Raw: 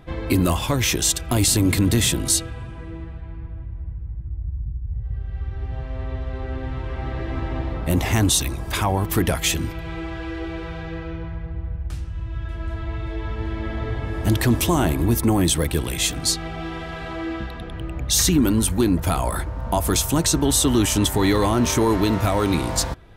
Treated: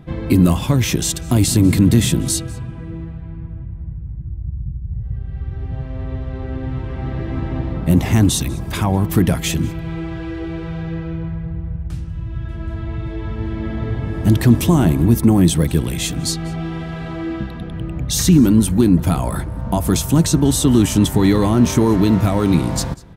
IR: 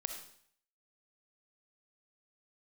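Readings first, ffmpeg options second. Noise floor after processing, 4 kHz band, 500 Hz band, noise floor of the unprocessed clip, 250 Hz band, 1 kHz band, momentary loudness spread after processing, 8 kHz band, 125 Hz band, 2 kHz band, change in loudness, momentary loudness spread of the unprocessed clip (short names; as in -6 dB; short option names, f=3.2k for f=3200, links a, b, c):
-30 dBFS, -1.5 dB, +2.0 dB, -34 dBFS, +7.0 dB, -0.5 dB, 14 LU, -1.5 dB, +6.5 dB, -1.5 dB, +4.0 dB, 14 LU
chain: -filter_complex "[0:a]equalizer=f=170:w=0.79:g=12,asplit=2[a][b];[b]aecho=0:1:195:0.0708[c];[a][c]amix=inputs=2:normalize=0,volume=-1.5dB"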